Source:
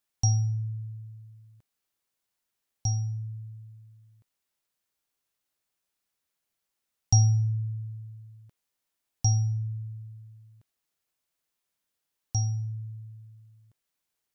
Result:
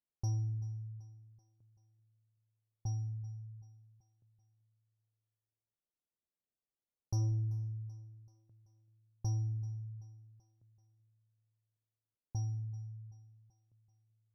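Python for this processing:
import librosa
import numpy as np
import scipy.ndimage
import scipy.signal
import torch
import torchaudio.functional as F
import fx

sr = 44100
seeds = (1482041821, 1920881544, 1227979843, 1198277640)

y = fx.env_lowpass(x, sr, base_hz=610.0, full_db=-25.0)
y = 10.0 ** (-21.0 / 20.0) * np.tanh(y / 10.0 ** (-21.0 / 20.0))
y = fx.lowpass(y, sr, hz=2100.0, slope=6)
y = fx.echo_feedback(y, sr, ms=384, feedback_pct=53, wet_db=-19)
y = fx.running_max(y, sr, window=5, at=(7.31, 7.71))
y = y * librosa.db_to_amplitude(-7.5)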